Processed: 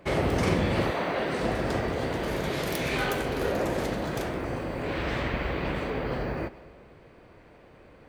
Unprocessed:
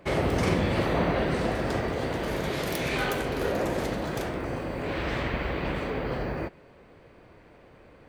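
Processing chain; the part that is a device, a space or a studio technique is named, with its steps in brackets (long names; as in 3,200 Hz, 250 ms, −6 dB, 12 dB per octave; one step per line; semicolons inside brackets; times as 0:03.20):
saturated reverb return (on a send at −13.5 dB: convolution reverb RT60 1.4 s, pre-delay 99 ms + soft clipping −30.5 dBFS, distortion −8 dB)
0:00.90–0:01.41: on the sum: high-pass filter 710 Hz → 230 Hz 6 dB per octave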